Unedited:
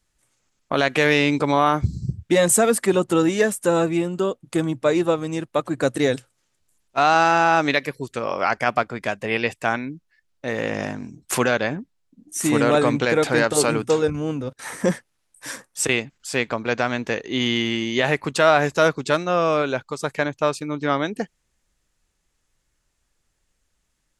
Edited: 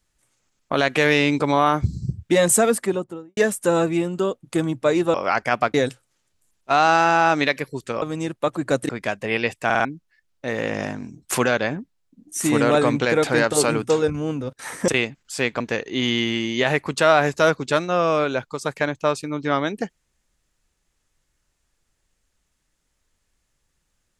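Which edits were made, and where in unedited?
0:02.60–0:03.37: fade out and dull
0:05.14–0:06.01: swap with 0:08.29–0:08.89
0:09.65: stutter in place 0.05 s, 4 plays
0:14.88–0:15.83: remove
0:16.55–0:16.98: remove

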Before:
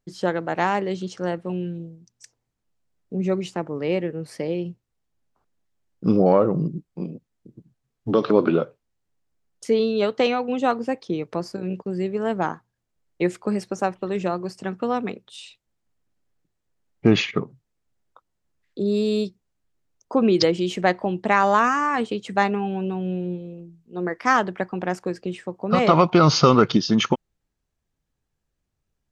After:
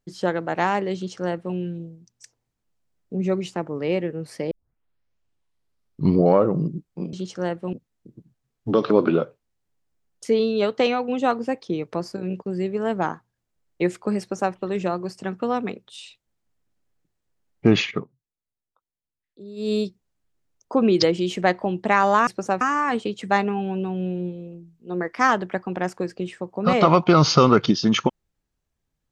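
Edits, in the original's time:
0:00.95–0:01.55: duplicate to 0:07.13
0:04.51: tape start 1.84 s
0:13.60–0:13.94: duplicate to 0:21.67
0:17.32–0:19.12: duck −17 dB, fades 0.16 s

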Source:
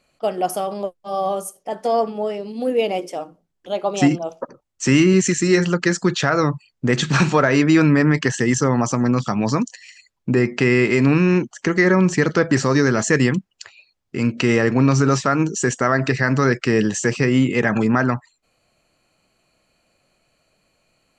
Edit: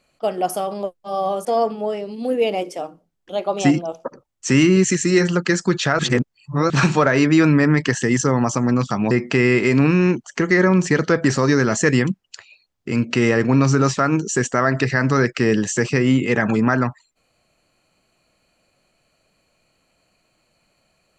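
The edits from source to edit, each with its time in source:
0:01.45–0:01.82: remove
0:06.36–0:07.07: reverse
0:09.48–0:10.38: remove

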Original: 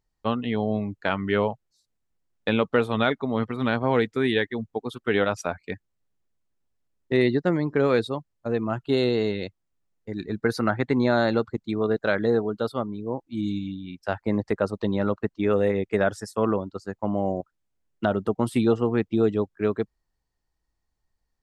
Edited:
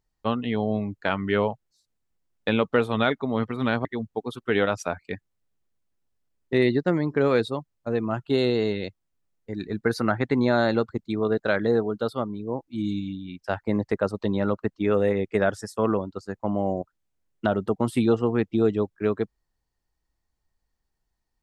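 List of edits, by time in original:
0:03.85–0:04.44: remove

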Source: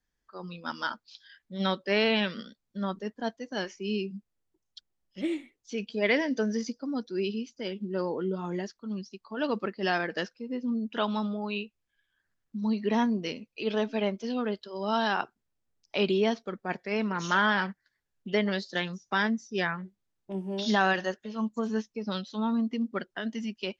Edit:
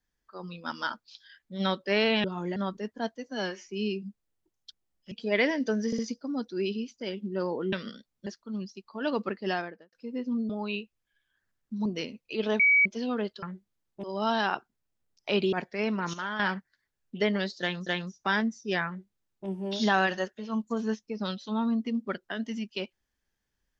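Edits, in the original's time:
0:02.24–0:02.78: swap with 0:08.31–0:08.63
0:03.49–0:03.76: time-stretch 1.5×
0:05.20–0:05.82: remove
0:06.57: stutter 0.06 s, 3 plays
0:09.75–0:10.29: fade out and dull
0:10.86–0:11.32: remove
0:12.68–0:13.13: remove
0:13.87–0:14.13: beep over 2,270 Hz −17.5 dBFS
0:16.19–0:16.65: remove
0:17.26–0:17.52: clip gain −10 dB
0:18.73–0:18.99: repeat, 2 plays
0:19.73–0:20.34: duplicate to 0:14.70

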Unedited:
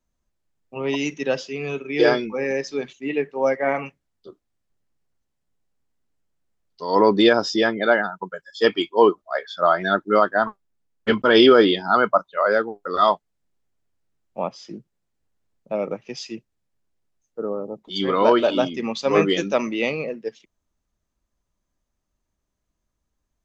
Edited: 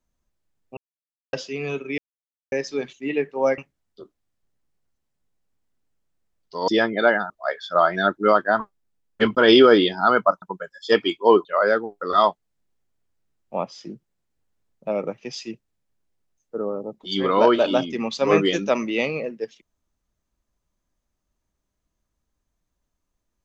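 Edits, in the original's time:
0:00.77–0:01.33: silence
0:01.98–0:02.52: silence
0:03.58–0:03.85: remove
0:06.95–0:07.52: remove
0:08.14–0:09.17: move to 0:12.29

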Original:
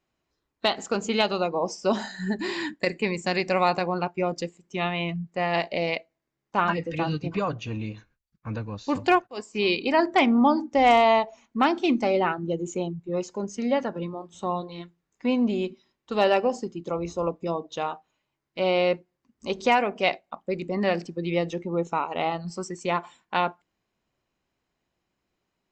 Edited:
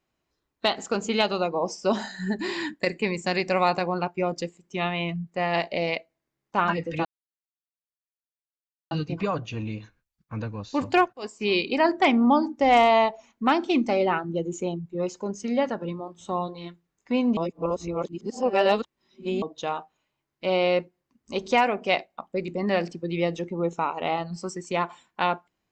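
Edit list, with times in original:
0:07.05: splice in silence 1.86 s
0:15.51–0:17.56: reverse

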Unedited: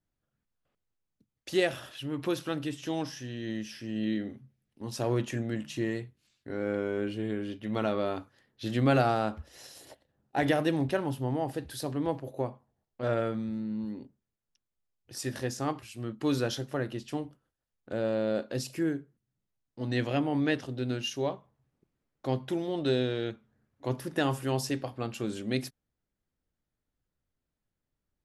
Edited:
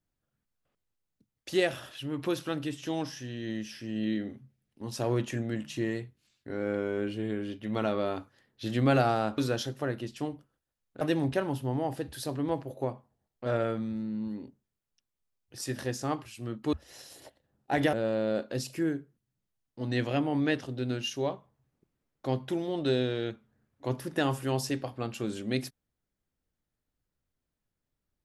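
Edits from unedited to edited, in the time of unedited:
0:09.38–0:10.58: swap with 0:16.30–0:17.93

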